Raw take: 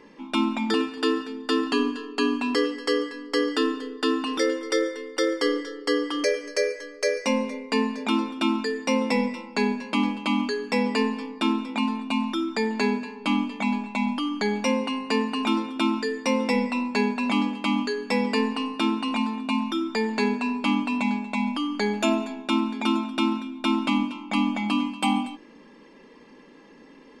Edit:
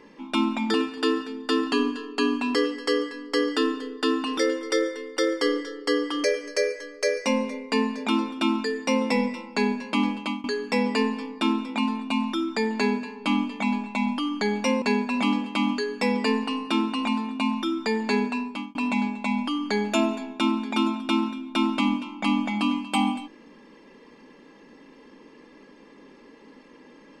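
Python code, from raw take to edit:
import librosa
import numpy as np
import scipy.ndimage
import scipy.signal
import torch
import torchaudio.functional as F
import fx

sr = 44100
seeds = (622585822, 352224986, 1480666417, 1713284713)

y = fx.edit(x, sr, fx.fade_out_to(start_s=10.19, length_s=0.25, floor_db=-23.0),
    fx.cut(start_s=14.82, length_s=2.09),
    fx.fade_out_span(start_s=20.37, length_s=0.47), tone=tone)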